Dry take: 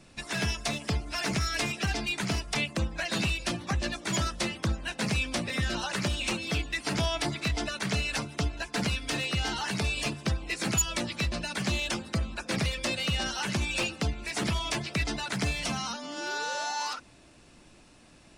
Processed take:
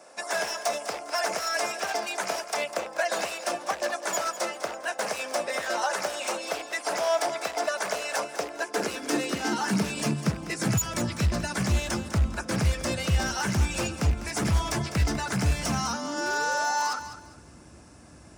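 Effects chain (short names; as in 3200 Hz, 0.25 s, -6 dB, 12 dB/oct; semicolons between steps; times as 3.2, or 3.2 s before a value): rattling part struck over -30 dBFS, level -26 dBFS; band shelf 3200 Hz -9.5 dB 1.1 oct; notch 1900 Hz, Q 13; in parallel at -2.5 dB: vocal rider 0.5 s; on the sum: limiter -17.5 dBFS, peak gain reduction 5 dB; wavefolder -21.5 dBFS; high-pass sweep 600 Hz -> 70 Hz, 8.19–11.44; on a send: thinning echo 0.201 s, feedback 27%, level -12 dB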